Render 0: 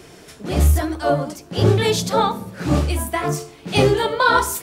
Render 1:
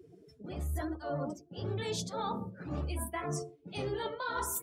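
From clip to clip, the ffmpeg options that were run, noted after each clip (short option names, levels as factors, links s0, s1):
-af "afftdn=nr=28:nf=-34,highshelf=f=11000:g=5,areverse,acompressor=threshold=0.0501:ratio=12,areverse,volume=0.473"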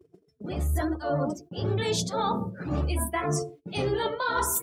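-af "agate=range=0.1:threshold=0.002:ratio=16:detection=peak,volume=2.66"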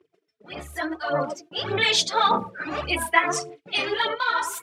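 -af "dynaudnorm=f=280:g=7:m=2.66,aphaser=in_gain=1:out_gain=1:delay=3.3:decay=0.57:speed=1.7:type=sinusoidal,bandpass=f=2300:t=q:w=1.1:csg=0,volume=1.88"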